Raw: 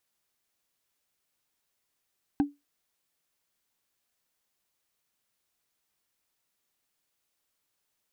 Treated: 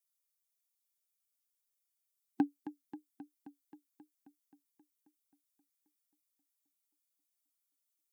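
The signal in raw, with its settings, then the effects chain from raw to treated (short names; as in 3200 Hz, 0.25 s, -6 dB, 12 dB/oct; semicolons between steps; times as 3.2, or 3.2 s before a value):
wood hit, lowest mode 287 Hz, decay 0.20 s, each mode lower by 9 dB, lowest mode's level -17 dB
per-bin expansion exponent 1.5; HPF 200 Hz; warbling echo 0.266 s, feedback 70%, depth 71 cents, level -14 dB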